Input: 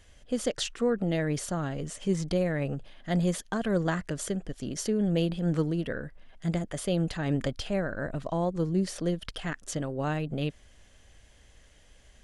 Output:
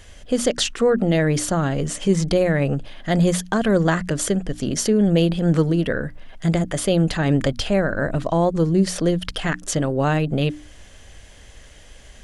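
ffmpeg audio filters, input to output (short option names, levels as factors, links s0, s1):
-filter_complex "[0:a]bandreject=f=60:t=h:w=6,bandreject=f=120:t=h:w=6,bandreject=f=180:t=h:w=6,bandreject=f=240:t=h:w=6,bandreject=f=300:t=h:w=6,asplit=2[s0][s1];[s1]alimiter=level_in=1.41:limit=0.0631:level=0:latency=1:release=225,volume=0.708,volume=0.794[s2];[s0][s2]amix=inputs=2:normalize=0,volume=2.37"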